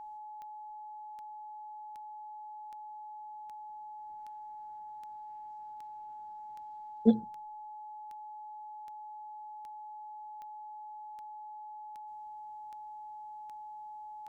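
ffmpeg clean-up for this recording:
ffmpeg -i in.wav -af "adeclick=threshold=4,bandreject=frequency=850:width=30" out.wav

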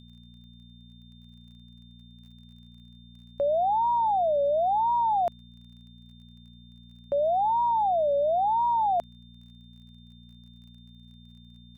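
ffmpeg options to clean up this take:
ffmpeg -i in.wav -af "adeclick=threshold=4,bandreject=frequency=59.2:width_type=h:width=4,bandreject=frequency=118.4:width_type=h:width=4,bandreject=frequency=177.6:width_type=h:width=4,bandreject=frequency=236.8:width_type=h:width=4,bandreject=frequency=3600:width=30" out.wav

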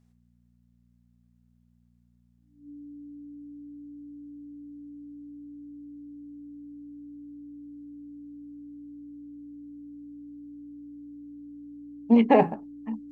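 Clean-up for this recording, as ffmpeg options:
ffmpeg -i in.wav -af "bandreject=frequency=59.4:width_type=h:width=4,bandreject=frequency=118.8:width_type=h:width=4,bandreject=frequency=178.2:width_type=h:width=4,bandreject=frequency=237.6:width_type=h:width=4,bandreject=frequency=290:width=30" out.wav

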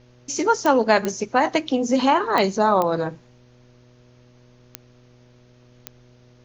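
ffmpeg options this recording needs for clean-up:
ffmpeg -i in.wav -af "adeclick=threshold=4,bandreject=frequency=122.9:width_type=h:width=4,bandreject=frequency=245.8:width_type=h:width=4,bandreject=frequency=368.7:width_type=h:width=4,bandreject=frequency=491.6:width_type=h:width=4,bandreject=frequency=614.5:width_type=h:width=4,agate=range=-21dB:threshold=-45dB" out.wav

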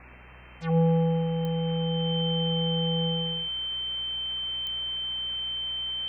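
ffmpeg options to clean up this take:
ffmpeg -i in.wav -af "adeclick=threshold=4,bandreject=frequency=61.3:width_type=h:width=4,bandreject=frequency=122.6:width_type=h:width=4,bandreject=frequency=183.9:width_type=h:width=4,bandreject=frequency=245.2:width_type=h:width=4,bandreject=frequency=3100:width=30,afwtdn=0.0071" out.wav

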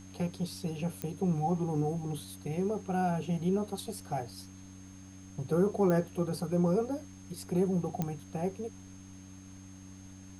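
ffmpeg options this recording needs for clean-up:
ffmpeg -i in.wav -af "adeclick=threshold=4,bandreject=frequency=94.7:width_type=h:width=4,bandreject=frequency=189.4:width_type=h:width=4,bandreject=frequency=284.1:width_type=h:width=4,bandreject=frequency=6400:width=30,agate=range=-21dB:threshold=-41dB" out.wav

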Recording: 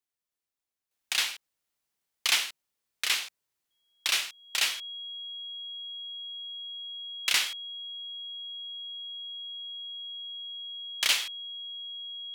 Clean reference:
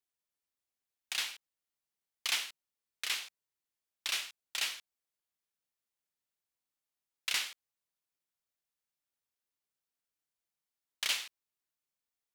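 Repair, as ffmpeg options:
ffmpeg -i in.wav -af "bandreject=frequency=3300:width=30,asetnsamples=nb_out_samples=441:pad=0,asendcmd='0.91 volume volume -7.5dB',volume=0dB" out.wav

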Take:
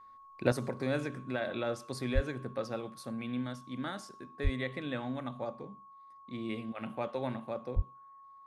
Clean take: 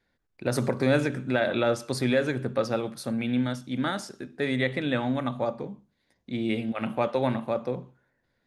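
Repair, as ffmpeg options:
ffmpeg -i in.wav -filter_complex "[0:a]bandreject=frequency=1100:width=30,asplit=3[link_01][link_02][link_03];[link_01]afade=type=out:start_time=2.14:duration=0.02[link_04];[link_02]highpass=frequency=140:width=0.5412,highpass=frequency=140:width=1.3066,afade=type=in:start_time=2.14:duration=0.02,afade=type=out:start_time=2.26:duration=0.02[link_05];[link_03]afade=type=in:start_time=2.26:duration=0.02[link_06];[link_04][link_05][link_06]amix=inputs=3:normalize=0,asplit=3[link_07][link_08][link_09];[link_07]afade=type=out:start_time=4.43:duration=0.02[link_10];[link_08]highpass=frequency=140:width=0.5412,highpass=frequency=140:width=1.3066,afade=type=in:start_time=4.43:duration=0.02,afade=type=out:start_time=4.55:duration=0.02[link_11];[link_09]afade=type=in:start_time=4.55:duration=0.02[link_12];[link_10][link_11][link_12]amix=inputs=3:normalize=0,asplit=3[link_13][link_14][link_15];[link_13]afade=type=out:start_time=7.75:duration=0.02[link_16];[link_14]highpass=frequency=140:width=0.5412,highpass=frequency=140:width=1.3066,afade=type=in:start_time=7.75:duration=0.02,afade=type=out:start_time=7.87:duration=0.02[link_17];[link_15]afade=type=in:start_time=7.87:duration=0.02[link_18];[link_16][link_17][link_18]amix=inputs=3:normalize=0,asetnsamples=nb_out_samples=441:pad=0,asendcmd='0.52 volume volume 10dB',volume=0dB" out.wav

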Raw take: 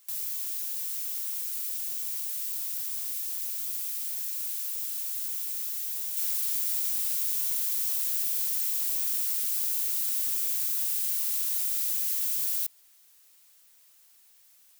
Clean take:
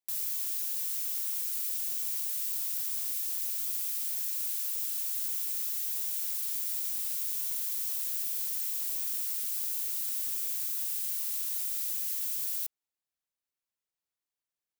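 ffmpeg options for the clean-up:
ffmpeg -i in.wav -af "agate=range=-21dB:threshold=-51dB,asetnsamples=nb_out_samples=441:pad=0,asendcmd='6.17 volume volume -4.5dB',volume=0dB" out.wav

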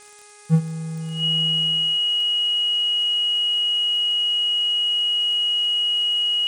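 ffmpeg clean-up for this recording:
ffmpeg -i in.wav -af "adeclick=threshold=4,bandreject=frequency=415.5:width_type=h:width=4,bandreject=frequency=831:width_type=h:width=4,bandreject=frequency=1246.5:width_type=h:width=4,bandreject=frequency=1662:width_type=h:width=4,bandreject=frequency=2077.5:width_type=h:width=4,bandreject=frequency=2493:width_type=h:width=4,bandreject=frequency=2900:width=30,afftdn=noise_reduction=30:noise_floor=-29" out.wav

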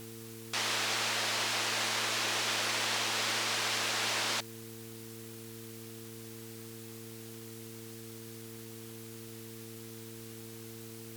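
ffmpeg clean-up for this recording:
ffmpeg -i in.wav -af "bandreject=frequency=112.9:width_type=h:width=4,bandreject=frequency=225.8:width_type=h:width=4,bandreject=frequency=338.7:width_type=h:width=4,bandreject=frequency=451.6:width_type=h:width=4,afwtdn=0.0028" out.wav

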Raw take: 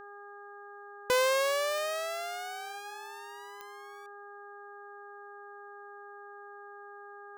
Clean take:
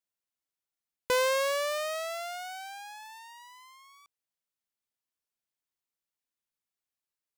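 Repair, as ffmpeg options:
ffmpeg -i in.wav -af "adeclick=threshold=4,bandreject=frequency=406.9:width_type=h:width=4,bandreject=frequency=813.8:width_type=h:width=4,bandreject=frequency=1220.7:width_type=h:width=4,bandreject=frequency=1627.6:width_type=h:width=4" out.wav

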